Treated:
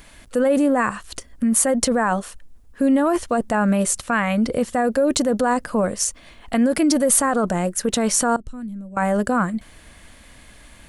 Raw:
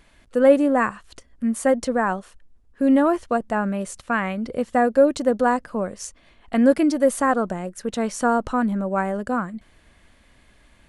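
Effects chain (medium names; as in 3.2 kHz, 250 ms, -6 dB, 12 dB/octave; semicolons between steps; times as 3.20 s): 8.36–8.97 s: amplifier tone stack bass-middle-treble 10-0-1; in parallel at -1 dB: compressor with a negative ratio -24 dBFS, ratio -0.5; on the sum: peak limiter -10.5 dBFS, peak gain reduction 6.5 dB; treble shelf 7 kHz +11 dB; band-stop 380 Hz, Q 12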